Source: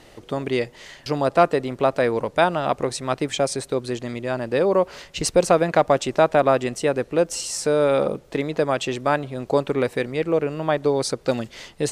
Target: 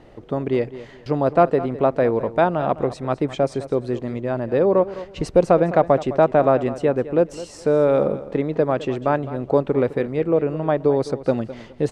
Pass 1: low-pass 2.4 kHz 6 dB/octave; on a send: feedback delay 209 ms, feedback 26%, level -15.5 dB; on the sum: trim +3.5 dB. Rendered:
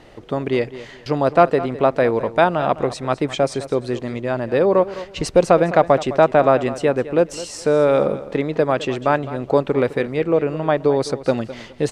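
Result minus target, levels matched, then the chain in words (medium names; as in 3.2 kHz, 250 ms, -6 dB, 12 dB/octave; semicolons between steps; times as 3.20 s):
2 kHz band +4.5 dB
low-pass 760 Hz 6 dB/octave; on a send: feedback delay 209 ms, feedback 26%, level -15.5 dB; on the sum: trim +3.5 dB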